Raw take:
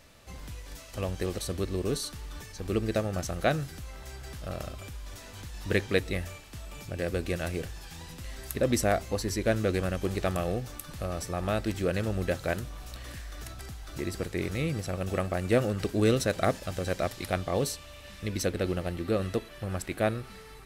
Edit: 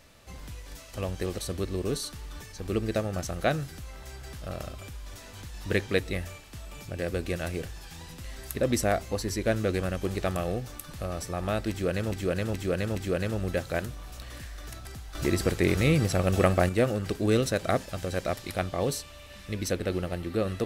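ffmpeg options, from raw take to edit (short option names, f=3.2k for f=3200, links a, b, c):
-filter_complex "[0:a]asplit=6[a][b][c][d][e][f];[a]atrim=end=12.122[g];[b]atrim=start=11.698:end=12.122[h];[c]atrim=start=11.698:end=12.122[i];[d]atrim=start=11.698:end=13.892[j];[e]atrim=start=13.888:end=15.432,asetpts=PTS-STARTPTS,volume=7.5dB[k];[f]atrim=start=15.428[l];[g][h]acrossfade=d=0.004:c1=hsin:c2=hsin[m];[m][i]acrossfade=d=0.004:c1=hsin:c2=hsin[n];[n][j]acrossfade=d=0.004:c1=hsin:c2=hsin[o];[o][k]acrossfade=d=0.004:c1=hsin:c2=hsin[p];[p][l]acrossfade=d=0.004:c1=hsin:c2=hsin"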